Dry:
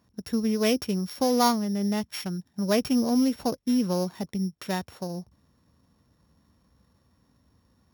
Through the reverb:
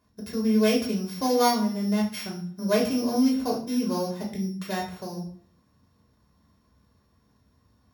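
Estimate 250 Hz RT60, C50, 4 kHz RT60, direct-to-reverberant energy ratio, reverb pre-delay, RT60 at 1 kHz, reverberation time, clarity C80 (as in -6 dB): 0.60 s, 7.5 dB, 0.40 s, -2.5 dB, 3 ms, 0.50 s, 0.50 s, 12.0 dB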